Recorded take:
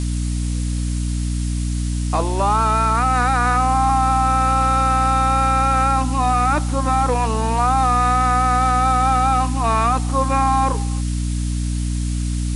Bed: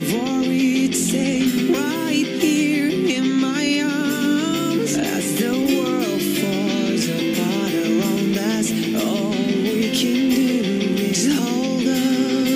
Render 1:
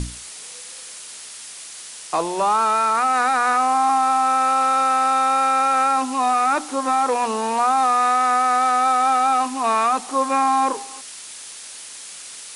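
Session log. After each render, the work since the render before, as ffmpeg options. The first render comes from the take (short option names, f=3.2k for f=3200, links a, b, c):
-af "bandreject=f=60:t=h:w=6,bandreject=f=120:t=h:w=6,bandreject=f=180:t=h:w=6,bandreject=f=240:t=h:w=6,bandreject=f=300:t=h:w=6"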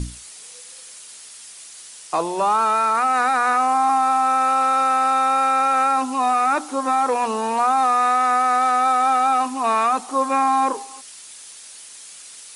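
-af "afftdn=nr=6:nf=-38"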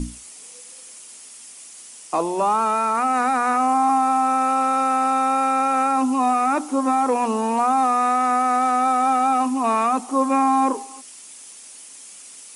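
-af "equalizer=f=100:t=o:w=0.67:g=-10,equalizer=f=250:t=o:w=0.67:g=8,equalizer=f=1.6k:t=o:w=0.67:g=-5,equalizer=f=4k:t=o:w=0.67:g=-7"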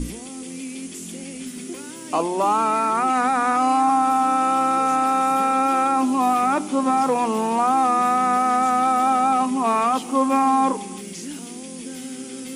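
-filter_complex "[1:a]volume=-16dB[a];[0:a][a]amix=inputs=2:normalize=0"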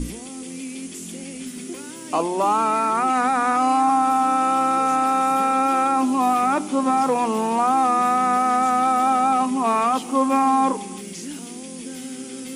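-af anull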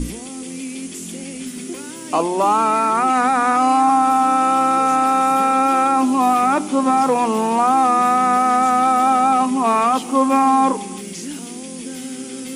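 -af "volume=3.5dB"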